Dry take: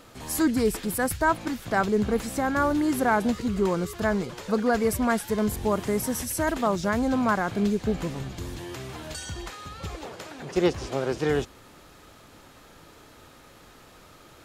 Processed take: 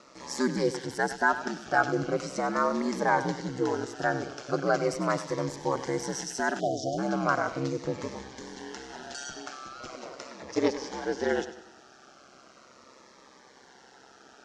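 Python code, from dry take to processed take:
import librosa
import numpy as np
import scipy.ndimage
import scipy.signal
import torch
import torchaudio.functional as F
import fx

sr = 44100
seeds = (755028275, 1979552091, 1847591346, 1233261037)

p1 = fx.cabinet(x, sr, low_hz=310.0, low_slope=12, high_hz=6500.0, hz=(770.0, 1500.0, 2500.0, 3600.0, 5700.0), db=(5, 5, -4, -5, 6))
p2 = p1 * np.sin(2.0 * np.pi * 66.0 * np.arange(len(p1)) / sr)
p3 = p2 + fx.echo_feedback(p2, sr, ms=97, feedback_pct=43, wet_db=-13.0, dry=0)
p4 = fx.spec_erase(p3, sr, start_s=6.6, length_s=0.38, low_hz=760.0, high_hz=2900.0)
p5 = fx.notch_cascade(p4, sr, direction='falling', hz=0.39)
y = F.gain(torch.from_numpy(p5), 2.0).numpy()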